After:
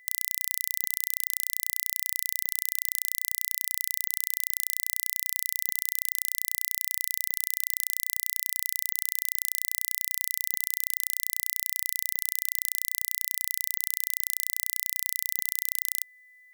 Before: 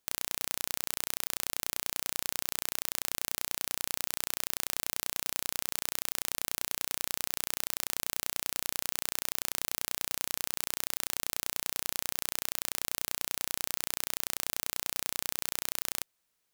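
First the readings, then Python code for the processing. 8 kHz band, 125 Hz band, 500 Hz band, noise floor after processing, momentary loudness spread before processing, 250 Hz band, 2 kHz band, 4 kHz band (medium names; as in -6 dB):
+3.0 dB, under -10 dB, under -10 dB, -56 dBFS, 0 LU, under -10 dB, -4.0 dB, -2.0 dB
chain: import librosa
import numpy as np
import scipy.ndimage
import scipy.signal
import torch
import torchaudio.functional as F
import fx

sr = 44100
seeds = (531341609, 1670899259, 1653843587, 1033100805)

y = x + 10.0 ** (-46.0 / 20.0) * np.sin(2.0 * np.pi * 2000.0 * np.arange(len(x)) / sr)
y = F.preemphasis(torch.from_numpy(y), 0.8).numpy()
y = y * librosa.db_to_amplitude(3.0)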